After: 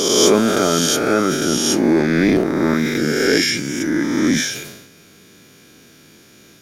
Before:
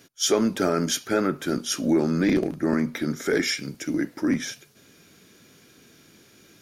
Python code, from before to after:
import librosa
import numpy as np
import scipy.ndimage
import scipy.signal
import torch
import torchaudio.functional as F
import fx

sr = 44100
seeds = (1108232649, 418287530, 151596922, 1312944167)

y = fx.spec_swells(x, sr, rise_s=1.79)
y = fx.sustainer(y, sr, db_per_s=57.0)
y = y * 10.0 ** (3.5 / 20.0)